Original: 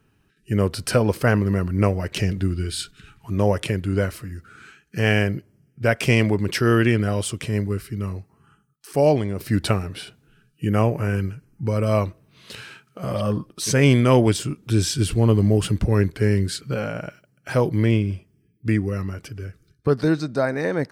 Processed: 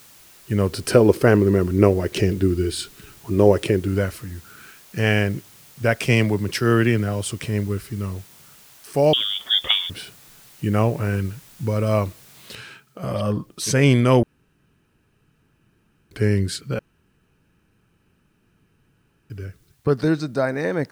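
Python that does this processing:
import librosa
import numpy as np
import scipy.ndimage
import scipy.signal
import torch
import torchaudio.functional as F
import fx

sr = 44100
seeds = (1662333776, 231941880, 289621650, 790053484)

y = fx.peak_eq(x, sr, hz=370.0, db=11.5, octaves=0.8, at=(0.72, 3.88))
y = fx.band_widen(y, sr, depth_pct=40, at=(6.03, 7.26))
y = fx.freq_invert(y, sr, carrier_hz=3500, at=(9.13, 9.9))
y = fx.noise_floor_step(y, sr, seeds[0], at_s=12.55, before_db=-49, after_db=-66, tilt_db=0.0)
y = fx.edit(y, sr, fx.room_tone_fill(start_s=14.23, length_s=1.88),
    fx.room_tone_fill(start_s=16.79, length_s=2.51), tone=tone)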